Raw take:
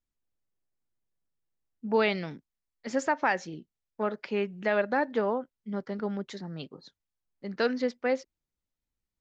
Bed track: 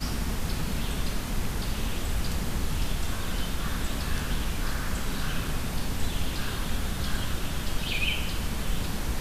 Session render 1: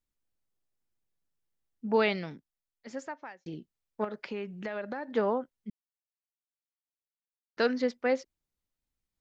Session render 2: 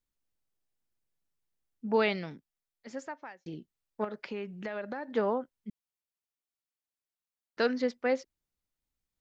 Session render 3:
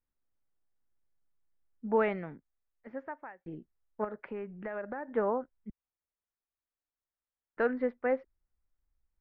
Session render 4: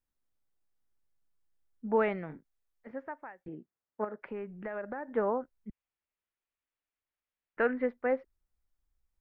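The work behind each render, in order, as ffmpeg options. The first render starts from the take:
ffmpeg -i in.wav -filter_complex "[0:a]asettb=1/sr,asplit=3[link_01][link_02][link_03];[link_01]atrim=end=4.044[link_04];[link_02]atrim=start=4.04:end=5.09,asetpts=PTS-STARTPTS,afade=type=in:duration=0.004:curve=qsin,afade=type=out:start_time=1.046:duration=0.004:curve=qsin,acompressor=threshold=-32dB:ratio=6:attack=3.2:release=140:knee=1:detection=peak[link_05];[link_03]atrim=start=5.086[link_06];[link_04][link_05]acrossfade=duration=0.004:curve1=hsin:curve2=qsin[link_07];[link_07][link_06]acrossfade=duration=0.004:curve1=qsin:curve2=hsin,asplit=4[link_08][link_09][link_10][link_11];[link_08]atrim=end=3.46,asetpts=PTS-STARTPTS,afade=type=out:start_time=1.89:duration=1.57[link_12];[link_09]atrim=start=3.46:end=5.7,asetpts=PTS-STARTPTS,afade=type=in:duration=0.004:curve=hsin,afade=type=out:start_time=2.236:duration=0.004:curve=hsin[link_13];[link_10]atrim=start=5.7:end=7.57,asetpts=PTS-STARTPTS,volume=0[link_14];[link_11]atrim=start=7.57,asetpts=PTS-STARTPTS,afade=type=in:duration=0.004:curve=hsin[link_15];[link_12][link_13][link_14][link_15]concat=n=4:v=0:a=1" out.wav
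ffmpeg -i in.wav -af "volume=-1dB" out.wav
ffmpeg -i in.wav -af "lowpass=frequency=1900:width=0.5412,lowpass=frequency=1900:width=1.3066,asubboost=boost=4.5:cutoff=74" out.wav
ffmpeg -i in.wav -filter_complex "[0:a]asettb=1/sr,asplit=3[link_01][link_02][link_03];[link_01]atrim=end=2.264[link_04];[link_02]atrim=start=2.26:end=2.91,asetpts=PTS-STARTPTS,afade=type=in:duration=0.004:curve=qsin,afade=type=out:start_time=0.646:duration=0.004:curve=qsin,asplit=2[link_05][link_06];[link_06]adelay=32,volume=-9dB[link_07];[link_05][link_07]amix=inputs=2:normalize=0,atrim=end_sample=28665[link_08];[link_03]atrim=start=2.906[link_09];[link_04][link_08]acrossfade=duration=0.004:curve1=hsin:curve2=qsin[link_10];[link_10][link_09]acrossfade=duration=0.004:curve1=qsin:curve2=hsin,asettb=1/sr,asplit=3[link_11][link_12][link_13];[link_11]atrim=end=3.484[link_14];[link_12]atrim=start=3.48:end=4.22,asetpts=PTS-STARTPTS,afade=type=in:duration=0.004:curve=qsin,afade=type=out:start_time=0.736:duration=0.004:curve=qsin,highpass=160,lowpass=2400[link_15];[link_13]atrim=start=4.216[link_16];[link_14][link_15]acrossfade=duration=0.004:curve1=hsin:curve2=qsin[link_17];[link_17][link_16]acrossfade=duration=0.004:curve1=qsin:curve2=hsin,asettb=1/sr,asplit=3[link_18][link_19][link_20];[link_18]atrim=end=5.694[link_21];[link_19]atrim=start=5.69:end=7.86,asetpts=PTS-STARTPTS,afade=type=in:duration=0.004:curve=qsin,afade=type=out:start_time=2.166:duration=0.004:curve=qsin,lowpass=frequency=2600:width_type=q:width=1.8[link_22];[link_20]atrim=start=7.856[link_23];[link_21][link_22]acrossfade=duration=0.004:curve1=hsin:curve2=qsin[link_24];[link_24][link_23]acrossfade=duration=0.004:curve1=qsin:curve2=hsin" out.wav

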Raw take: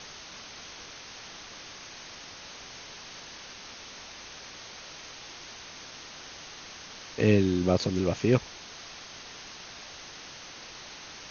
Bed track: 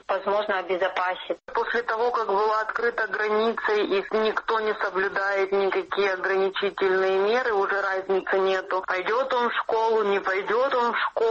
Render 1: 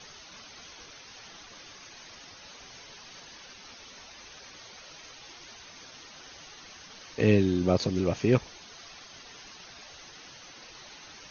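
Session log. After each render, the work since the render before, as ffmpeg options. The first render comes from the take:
ffmpeg -i in.wav -af "afftdn=noise_reduction=10:noise_floor=-46" out.wav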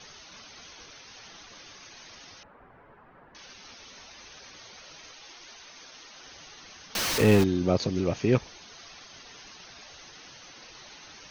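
ffmpeg -i in.wav -filter_complex "[0:a]asettb=1/sr,asplit=3[link_01][link_02][link_03];[link_01]atrim=end=2.434[link_04];[link_02]atrim=start=2.43:end=3.35,asetpts=PTS-STARTPTS,afade=type=in:duration=0.004:curve=qsin,afade=type=out:start_time=0.916:duration=0.004:curve=qsin,lowpass=frequency=1500:width=0.5412,lowpass=frequency=1500:width=1.3066[link_05];[link_03]atrim=start=3.346[link_06];[link_04][link_05]acrossfade=duration=0.004:curve1=hsin:curve2=qsin[link_07];[link_07][link_06]acrossfade=duration=0.004:curve1=qsin:curve2=hsin,asettb=1/sr,asplit=3[link_08][link_09][link_10];[link_08]atrim=end=5.114[link_11];[link_09]atrim=start=5.11:end=6.23,asetpts=PTS-STARTPTS,afade=type=in:duration=0.004:curve=qsin,afade=type=out:start_time=1.116:duration=0.004:curve=qsin,equalizer=frequency=92:width_type=o:width=2.5:gain=-9[link_12];[link_10]atrim=start=6.226[link_13];[link_11][link_12]acrossfade=duration=0.004:curve1=hsin:curve2=qsin[link_14];[link_14][link_13]acrossfade=duration=0.004:curve1=qsin:curve2=hsin,asettb=1/sr,asplit=3[link_15][link_16][link_17];[link_15]atrim=end=6.954[link_18];[link_16]atrim=start=6.95:end=7.44,asetpts=PTS-STARTPTS,afade=type=in:duration=0.004:curve=qsin,afade=type=out:start_time=0.486:duration=0.004:curve=qsin,aeval=exprs='val(0)+0.5*0.0708*sgn(val(0))':channel_layout=same[link_19];[link_17]atrim=start=7.436[link_20];[link_18][link_19]acrossfade=duration=0.004:curve1=hsin:curve2=qsin[link_21];[link_21][link_20]acrossfade=duration=0.004:curve1=qsin:curve2=hsin" out.wav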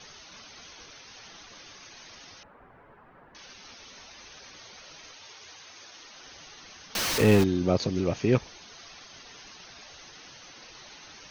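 ffmpeg -i in.wav -filter_complex "[0:a]asettb=1/sr,asplit=3[link_01][link_02][link_03];[link_01]atrim=end=5.184[link_04];[link_02]atrim=start=5.18:end=5.99,asetpts=PTS-STARTPTS,afade=type=in:duration=0.004:curve=qsin,afade=type=out:start_time=0.806:duration=0.004:curve=qsin,afreqshift=77[link_05];[link_03]atrim=start=5.986[link_06];[link_04][link_05]acrossfade=duration=0.004:curve1=hsin:curve2=qsin[link_07];[link_07][link_06]acrossfade=duration=0.004:curve1=qsin:curve2=hsin" out.wav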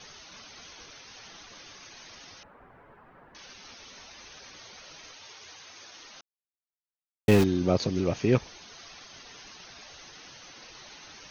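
ffmpeg -i in.wav -filter_complex "[0:a]asplit=3[link_01][link_02][link_03];[link_01]atrim=end=6.21,asetpts=PTS-STARTPTS,afade=type=out:start_time=6.206:duration=0.004:curve=hsin[link_04];[link_02]atrim=start=6.21:end=7.28,asetpts=PTS-STARTPTS,volume=0[link_05];[link_03]atrim=start=7.28,asetpts=PTS-STARTPTS,afade=type=in:duration=0.004:curve=hsin[link_06];[link_04][link_05][link_06]concat=n=3:v=0:a=1" out.wav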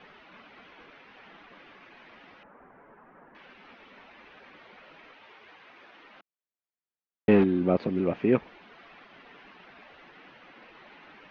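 ffmpeg -i in.wav -af "lowpass=frequency=2600:width=0.5412,lowpass=frequency=2600:width=1.3066,lowshelf=frequency=150:width_type=q:width=1.5:gain=-8.5" out.wav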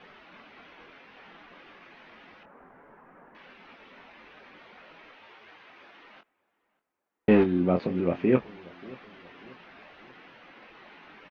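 ffmpeg -i in.wav -filter_complex "[0:a]asplit=2[link_01][link_02];[link_02]adelay=23,volume=-8dB[link_03];[link_01][link_03]amix=inputs=2:normalize=0,asplit=2[link_04][link_05];[link_05]adelay=585,lowpass=frequency=1500:poles=1,volume=-22dB,asplit=2[link_06][link_07];[link_07]adelay=585,lowpass=frequency=1500:poles=1,volume=0.46,asplit=2[link_08][link_09];[link_09]adelay=585,lowpass=frequency=1500:poles=1,volume=0.46[link_10];[link_04][link_06][link_08][link_10]amix=inputs=4:normalize=0" out.wav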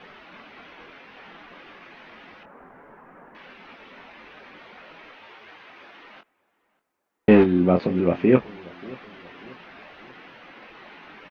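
ffmpeg -i in.wav -af "volume=5.5dB" out.wav

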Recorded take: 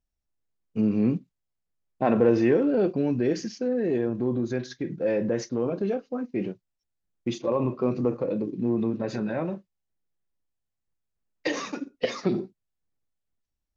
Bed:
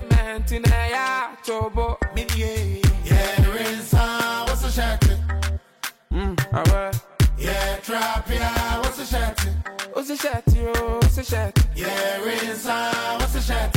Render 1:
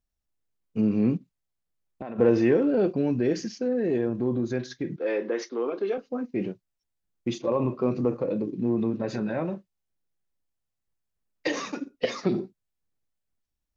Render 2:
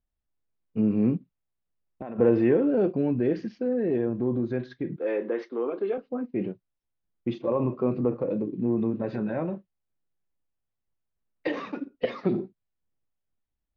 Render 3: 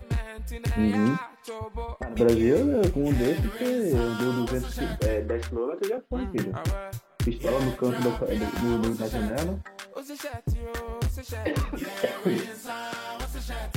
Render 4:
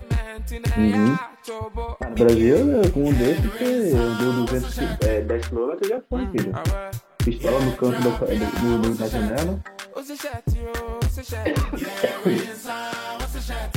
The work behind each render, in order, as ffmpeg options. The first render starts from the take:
ffmpeg -i in.wav -filter_complex "[0:a]asplit=3[link_01][link_02][link_03];[link_01]afade=type=out:start_time=1.16:duration=0.02[link_04];[link_02]acompressor=threshold=-33dB:ratio=6:attack=3.2:release=140:knee=1:detection=peak,afade=type=in:start_time=1.16:duration=0.02,afade=type=out:start_time=2.18:duration=0.02[link_05];[link_03]afade=type=in:start_time=2.18:duration=0.02[link_06];[link_04][link_05][link_06]amix=inputs=3:normalize=0,asettb=1/sr,asplit=3[link_07][link_08][link_09];[link_07]atrim=end=4.964[link_10];[link_08]atrim=start=4.96:end=5.98,asetpts=PTS-STARTPTS,afade=type=in:duration=0.004:curve=qsin,afade=type=out:start_time=1.016:duration=0.004:curve=qsin,highpass=frequency=310:width=0.5412,highpass=frequency=310:width=1.3066,equalizer=frequency=400:width_type=q:width=4:gain=3,equalizer=frequency=590:width_type=q:width=4:gain=-6,equalizer=frequency=1200:width_type=q:width=4:gain=6,equalizer=frequency=2100:width_type=q:width=4:gain=5,equalizer=frequency=3400:width_type=q:width=4:gain=6,lowpass=frequency=5800:width=0.5412,lowpass=frequency=5800:width=1.3066[link_11];[link_09]atrim=start=5.976[link_12];[link_10][link_11]acrossfade=duration=0.004:curve1=hsin:curve2=qsin[link_13];[link_13][link_12]acrossfade=duration=0.004:curve1=qsin:curve2=hsin" out.wav
ffmpeg -i in.wav -af "lowpass=frequency=3900:width=0.5412,lowpass=frequency=3900:width=1.3066,highshelf=frequency=2200:gain=-8.5" out.wav
ffmpeg -i in.wav -i bed.wav -filter_complex "[1:a]volume=-11.5dB[link_01];[0:a][link_01]amix=inputs=2:normalize=0" out.wav
ffmpeg -i in.wav -af "volume=5dB" out.wav

